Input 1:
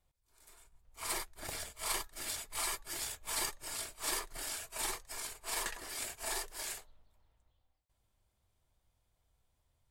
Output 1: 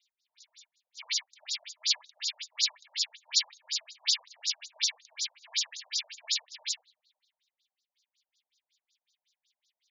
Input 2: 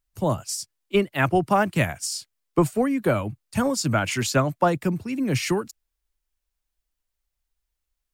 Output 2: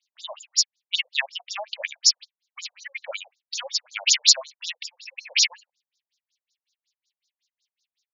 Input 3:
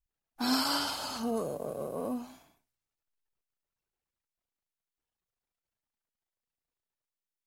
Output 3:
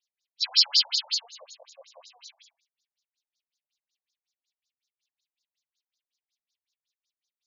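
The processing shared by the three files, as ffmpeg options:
ffmpeg -i in.wav -af "aexciter=amount=14:drive=6.7:freq=2100,afftfilt=real='re*between(b*sr/1024,660*pow(5200/660,0.5+0.5*sin(2*PI*5.4*pts/sr))/1.41,660*pow(5200/660,0.5+0.5*sin(2*PI*5.4*pts/sr))*1.41)':imag='im*between(b*sr/1024,660*pow(5200/660,0.5+0.5*sin(2*PI*5.4*pts/sr))/1.41,660*pow(5200/660,0.5+0.5*sin(2*PI*5.4*pts/sr))*1.41)':win_size=1024:overlap=0.75,volume=-8.5dB" out.wav

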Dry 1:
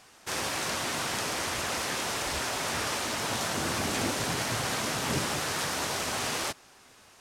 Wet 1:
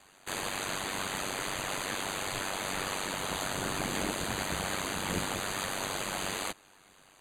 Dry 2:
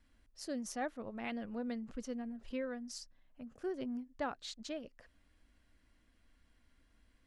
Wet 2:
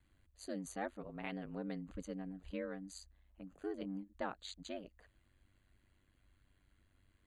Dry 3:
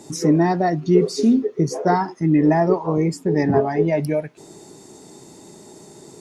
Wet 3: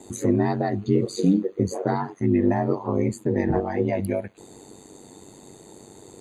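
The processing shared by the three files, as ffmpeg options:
ffmpeg -i in.wav -filter_complex "[0:a]acrossover=split=280|3000[link_01][link_02][link_03];[link_02]acompressor=threshold=-20dB:ratio=6[link_04];[link_01][link_04][link_03]amix=inputs=3:normalize=0,asuperstop=centerf=5400:order=12:qfactor=4.1,aeval=exprs='val(0)*sin(2*PI*48*n/s)':channel_layout=same" out.wav

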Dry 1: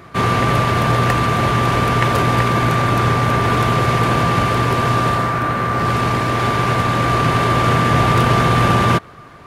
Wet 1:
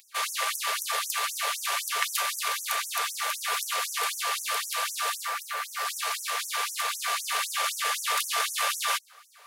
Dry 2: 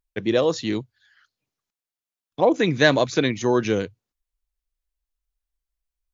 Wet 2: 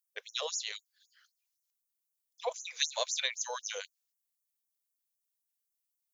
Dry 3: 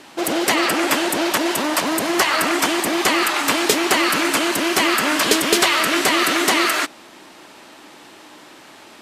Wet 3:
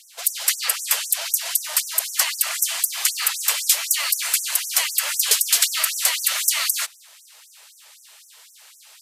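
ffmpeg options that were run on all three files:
ffmpeg -i in.wav -af "crystalizer=i=9:c=0,afftfilt=real='re*gte(b*sr/1024,390*pow(5700/390,0.5+0.5*sin(2*PI*3.9*pts/sr)))':imag='im*gte(b*sr/1024,390*pow(5700/390,0.5+0.5*sin(2*PI*3.9*pts/sr)))':win_size=1024:overlap=0.75,volume=-16dB" out.wav

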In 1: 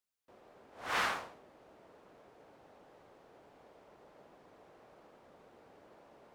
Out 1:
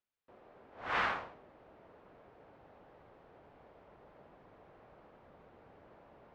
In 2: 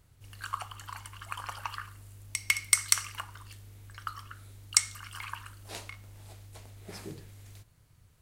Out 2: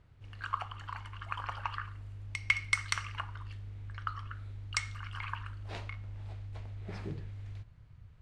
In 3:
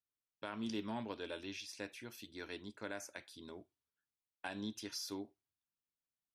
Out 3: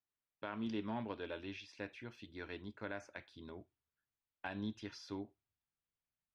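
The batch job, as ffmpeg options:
ffmpeg -i in.wav -af "lowpass=2800,asubboost=boost=2:cutoff=180,volume=1dB" out.wav

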